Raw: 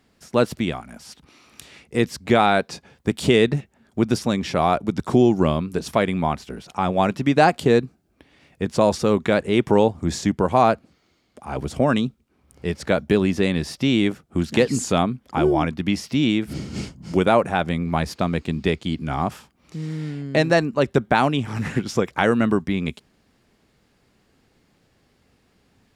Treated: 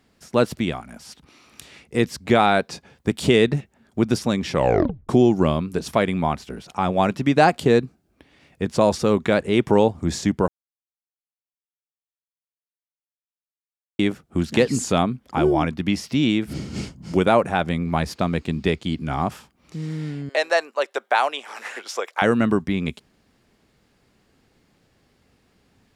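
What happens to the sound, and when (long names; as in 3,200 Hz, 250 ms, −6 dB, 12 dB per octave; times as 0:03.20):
0:04.52: tape stop 0.57 s
0:10.48–0:13.99: silence
0:20.29–0:22.22: high-pass filter 530 Hz 24 dB per octave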